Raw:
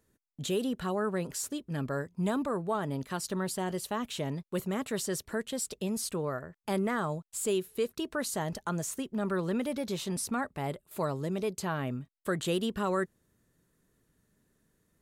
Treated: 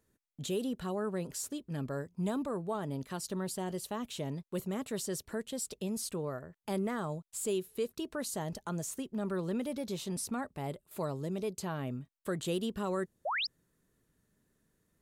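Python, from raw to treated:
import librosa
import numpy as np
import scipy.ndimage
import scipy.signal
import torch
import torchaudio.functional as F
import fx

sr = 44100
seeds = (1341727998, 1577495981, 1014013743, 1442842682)

y = fx.dynamic_eq(x, sr, hz=1600.0, q=0.85, threshold_db=-48.0, ratio=4.0, max_db=-5)
y = fx.spec_paint(y, sr, seeds[0], shape='rise', start_s=13.25, length_s=0.22, low_hz=520.0, high_hz=5600.0, level_db=-30.0)
y = y * librosa.db_to_amplitude(-3.0)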